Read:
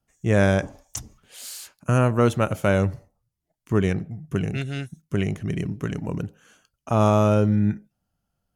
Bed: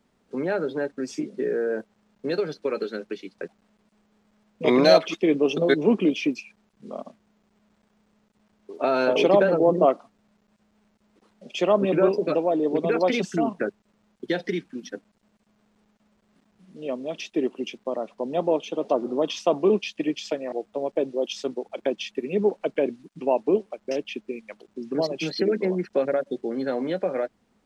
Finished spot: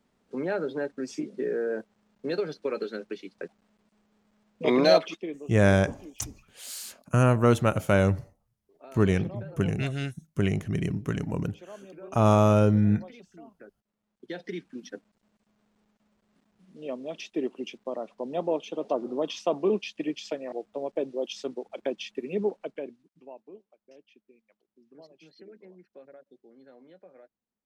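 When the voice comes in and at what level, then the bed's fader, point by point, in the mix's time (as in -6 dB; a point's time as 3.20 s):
5.25 s, -1.5 dB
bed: 5.02 s -3.5 dB
5.52 s -25 dB
13.51 s -25 dB
14.73 s -5 dB
22.42 s -5 dB
23.48 s -26.5 dB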